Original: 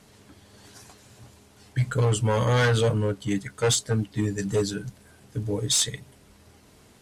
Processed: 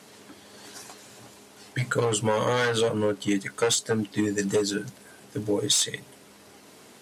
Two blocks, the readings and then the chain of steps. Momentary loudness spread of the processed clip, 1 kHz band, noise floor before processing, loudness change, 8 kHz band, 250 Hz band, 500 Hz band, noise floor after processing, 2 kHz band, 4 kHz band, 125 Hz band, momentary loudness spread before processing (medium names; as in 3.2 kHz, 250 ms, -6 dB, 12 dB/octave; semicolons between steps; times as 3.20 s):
19 LU, +1.0 dB, -55 dBFS, -0.5 dB, 0.0 dB, +1.0 dB, +1.0 dB, -52 dBFS, +0.5 dB, +0.5 dB, -8.5 dB, 12 LU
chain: high-pass 230 Hz 12 dB/octave; compression 6:1, threshold -26 dBFS, peak gain reduction 8 dB; trim +6 dB